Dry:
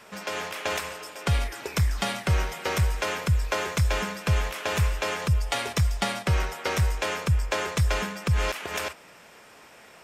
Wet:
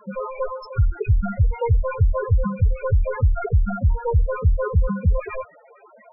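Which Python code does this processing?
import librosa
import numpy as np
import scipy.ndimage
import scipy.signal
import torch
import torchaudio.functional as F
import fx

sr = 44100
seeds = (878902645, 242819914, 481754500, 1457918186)

p1 = fx.tracing_dist(x, sr, depth_ms=0.22)
p2 = fx.env_lowpass_down(p1, sr, base_hz=2100.0, full_db=-20.0)
p3 = fx.over_compress(p2, sr, threshold_db=-27.0, ratio=-1.0)
p4 = p2 + (p3 * 10.0 ** (1.0 / 20.0))
p5 = fx.stretch_grains(p4, sr, factor=0.61, grain_ms=47.0)
p6 = fx.spec_topn(p5, sr, count=4)
y = p6 * 10.0 ** (5.0 / 20.0)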